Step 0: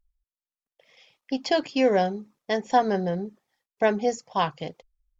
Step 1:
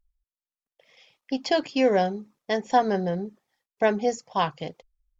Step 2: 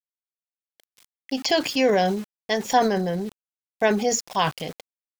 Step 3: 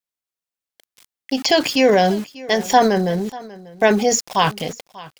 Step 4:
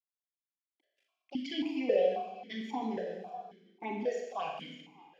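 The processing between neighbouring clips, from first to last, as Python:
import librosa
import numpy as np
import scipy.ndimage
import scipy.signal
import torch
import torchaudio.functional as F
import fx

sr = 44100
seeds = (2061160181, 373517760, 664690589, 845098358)

y1 = x
y2 = np.where(np.abs(y1) >= 10.0 ** (-47.5 / 20.0), y1, 0.0)
y2 = fx.transient(y2, sr, attack_db=0, sustain_db=8)
y2 = fx.high_shelf(y2, sr, hz=2100.0, db=8.0)
y3 = y2 + 10.0 ** (-20.0 / 20.0) * np.pad(y2, (int(591 * sr / 1000.0), 0))[:len(y2)]
y3 = y3 * 10.0 ** (5.5 / 20.0)
y4 = fx.env_flanger(y3, sr, rest_ms=3.0, full_db=-10.0)
y4 = fx.rev_schroeder(y4, sr, rt60_s=1.2, comb_ms=28, drr_db=1.0)
y4 = fx.vowel_held(y4, sr, hz=3.7)
y4 = y4 * 10.0 ** (-6.5 / 20.0)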